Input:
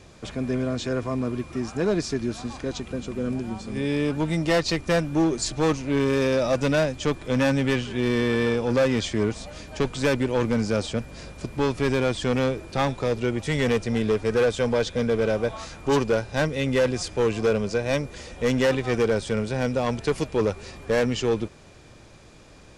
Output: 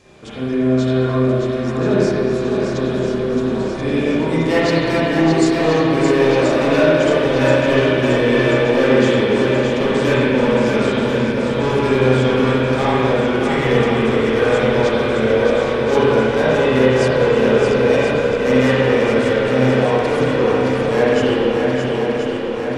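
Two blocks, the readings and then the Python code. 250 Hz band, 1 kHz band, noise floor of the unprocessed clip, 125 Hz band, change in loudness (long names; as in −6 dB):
+8.5 dB, +10.5 dB, −49 dBFS, +7.5 dB, +9.0 dB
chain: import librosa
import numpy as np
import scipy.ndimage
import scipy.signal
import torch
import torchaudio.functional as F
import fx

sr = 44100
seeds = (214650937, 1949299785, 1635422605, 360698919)

p1 = fx.low_shelf(x, sr, hz=120.0, db=-8.0)
p2 = p1 + fx.echo_swing(p1, sr, ms=1031, ratio=1.5, feedback_pct=63, wet_db=-5.5, dry=0)
p3 = fx.rev_spring(p2, sr, rt60_s=2.0, pass_ms=(31, 49, 54), chirp_ms=45, drr_db=-8.5)
y = p3 * librosa.db_to_amplitude(-1.5)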